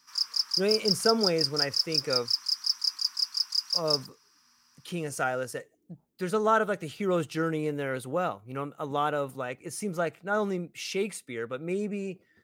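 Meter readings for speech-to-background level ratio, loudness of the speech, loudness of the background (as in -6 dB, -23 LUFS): -4.0 dB, -31.0 LUFS, -27.0 LUFS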